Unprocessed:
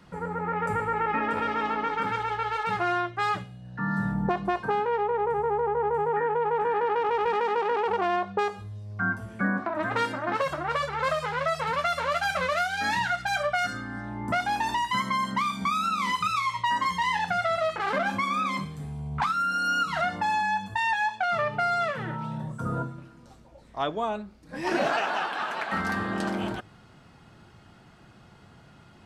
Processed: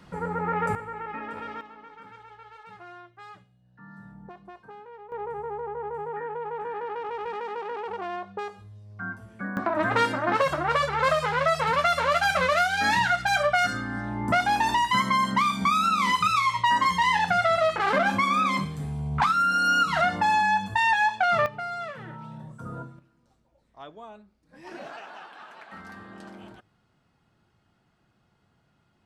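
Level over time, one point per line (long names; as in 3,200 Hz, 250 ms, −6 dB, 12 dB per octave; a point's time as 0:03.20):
+2 dB
from 0:00.75 −9 dB
from 0:01.61 −19 dB
from 0:05.12 −7.5 dB
from 0:09.57 +4 dB
from 0:21.46 −7.5 dB
from 0:22.99 −15 dB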